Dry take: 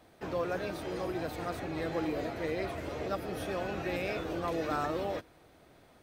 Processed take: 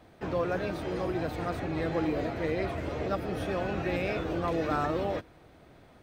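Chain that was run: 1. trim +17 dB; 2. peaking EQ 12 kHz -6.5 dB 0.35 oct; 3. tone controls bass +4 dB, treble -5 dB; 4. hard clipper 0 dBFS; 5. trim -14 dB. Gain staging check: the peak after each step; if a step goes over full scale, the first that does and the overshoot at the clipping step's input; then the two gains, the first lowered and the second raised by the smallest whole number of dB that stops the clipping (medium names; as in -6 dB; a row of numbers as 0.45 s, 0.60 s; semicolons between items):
-2.5 dBFS, -2.5 dBFS, -2.5 dBFS, -2.5 dBFS, -16.5 dBFS; nothing clips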